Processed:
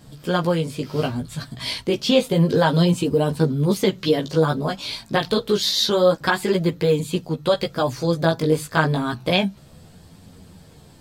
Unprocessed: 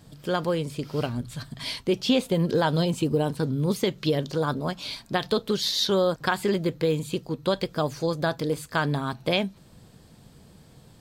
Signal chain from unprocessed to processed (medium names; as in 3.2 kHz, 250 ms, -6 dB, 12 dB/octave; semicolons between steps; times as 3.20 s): chorus voices 2, 0.29 Hz, delay 15 ms, depth 4.3 ms; trim +8 dB